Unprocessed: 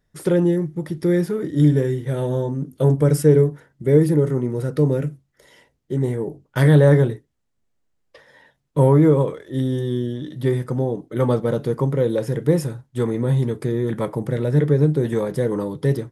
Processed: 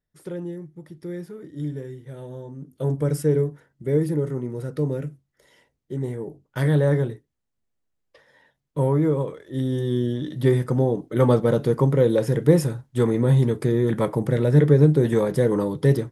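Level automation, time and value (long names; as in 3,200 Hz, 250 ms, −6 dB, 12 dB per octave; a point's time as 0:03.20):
0:02.43 −14.5 dB
0:02.95 −6.5 dB
0:09.26 −6.5 dB
0:10.11 +1.5 dB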